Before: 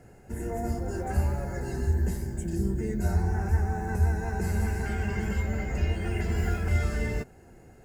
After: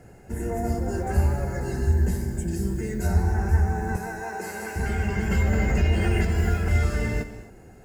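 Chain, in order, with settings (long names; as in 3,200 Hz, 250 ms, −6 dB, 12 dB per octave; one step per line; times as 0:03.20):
0:02.53–0:03.07: tilt shelving filter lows −3.5 dB
0:03.96–0:04.76: high-pass filter 400 Hz 12 dB per octave
reverb whose tail is shaped and stops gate 290 ms flat, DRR 9.5 dB
0:05.31–0:06.25: envelope flattener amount 50%
level +3.5 dB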